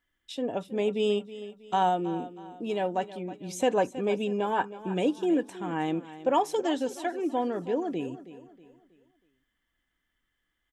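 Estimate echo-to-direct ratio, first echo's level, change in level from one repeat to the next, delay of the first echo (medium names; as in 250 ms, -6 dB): -14.5 dB, -15.0 dB, -8.0 dB, 320 ms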